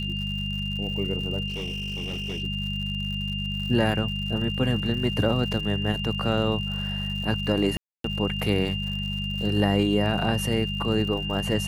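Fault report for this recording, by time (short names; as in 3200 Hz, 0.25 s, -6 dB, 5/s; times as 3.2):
crackle 130/s -35 dBFS
hum 50 Hz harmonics 4 -31 dBFS
tone 2800 Hz -31 dBFS
1.47–2.42 clipped -27.5 dBFS
7.77–8.04 gap 0.273 s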